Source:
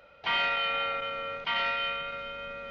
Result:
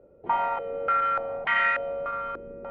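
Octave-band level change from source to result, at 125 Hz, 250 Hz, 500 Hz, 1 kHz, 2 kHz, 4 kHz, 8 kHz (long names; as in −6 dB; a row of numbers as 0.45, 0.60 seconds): +2.0 dB, +4.0 dB, +6.5 dB, +6.0 dB, +2.5 dB, −12.5 dB, can't be measured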